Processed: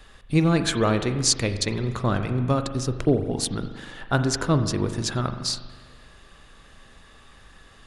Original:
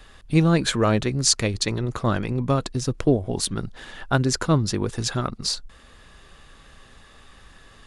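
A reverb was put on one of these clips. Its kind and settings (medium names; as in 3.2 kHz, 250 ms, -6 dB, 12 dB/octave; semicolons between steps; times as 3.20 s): spring tank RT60 1.5 s, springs 40 ms, chirp 70 ms, DRR 8 dB; trim -1.5 dB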